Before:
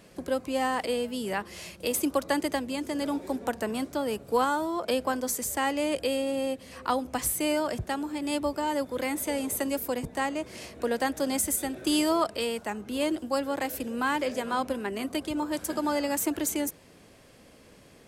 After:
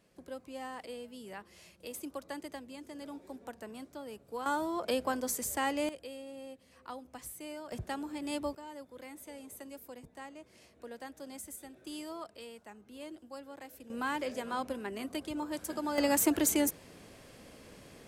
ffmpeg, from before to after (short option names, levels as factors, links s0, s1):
-af "asetnsamples=n=441:p=0,asendcmd='4.46 volume volume -4.5dB;5.89 volume volume -17dB;7.72 volume volume -7dB;8.55 volume volume -18dB;13.9 volume volume -7dB;15.98 volume volume 1dB',volume=0.178"